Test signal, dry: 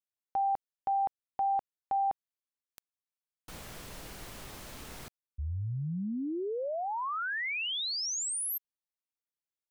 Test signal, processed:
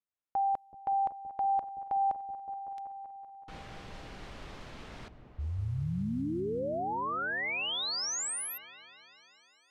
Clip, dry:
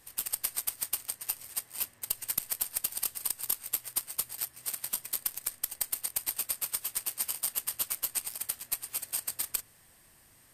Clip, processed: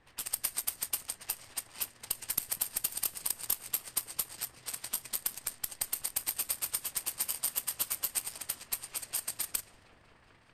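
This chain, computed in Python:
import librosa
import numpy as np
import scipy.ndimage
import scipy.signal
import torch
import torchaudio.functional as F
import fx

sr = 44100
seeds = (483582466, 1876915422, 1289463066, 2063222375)

y = fx.echo_opening(x, sr, ms=189, hz=200, octaves=1, feedback_pct=70, wet_db=-6)
y = fx.env_lowpass(y, sr, base_hz=2300.0, full_db=-29.0)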